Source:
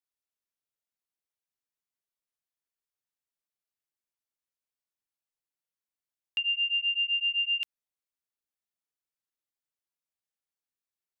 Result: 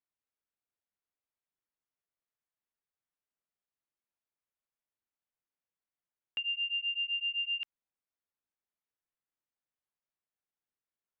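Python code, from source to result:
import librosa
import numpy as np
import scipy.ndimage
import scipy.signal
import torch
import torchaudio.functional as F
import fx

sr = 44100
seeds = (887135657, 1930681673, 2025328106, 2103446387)

y = scipy.signal.sosfilt(scipy.signal.butter(2, 2200.0, 'lowpass', fs=sr, output='sos'), x)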